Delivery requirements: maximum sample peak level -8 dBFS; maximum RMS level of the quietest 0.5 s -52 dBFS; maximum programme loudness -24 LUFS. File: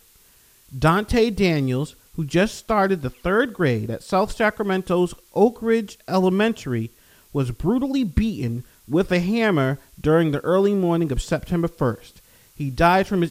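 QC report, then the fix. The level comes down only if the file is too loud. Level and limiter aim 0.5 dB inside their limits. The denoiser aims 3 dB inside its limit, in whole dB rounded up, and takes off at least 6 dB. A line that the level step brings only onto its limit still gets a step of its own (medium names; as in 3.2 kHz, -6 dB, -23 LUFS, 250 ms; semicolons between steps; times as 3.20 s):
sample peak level -2.5 dBFS: fail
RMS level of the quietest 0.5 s -54 dBFS: pass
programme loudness -21.5 LUFS: fail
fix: trim -3 dB; peak limiter -8.5 dBFS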